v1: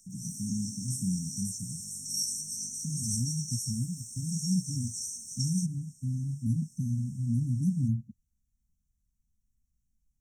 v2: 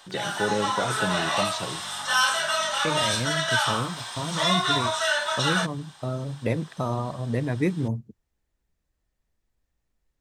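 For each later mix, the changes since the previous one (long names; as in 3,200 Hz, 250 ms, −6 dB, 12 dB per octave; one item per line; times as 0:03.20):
master: remove linear-phase brick-wall band-stop 270–5,400 Hz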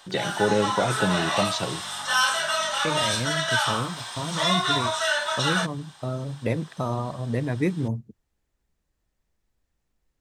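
first voice +4.5 dB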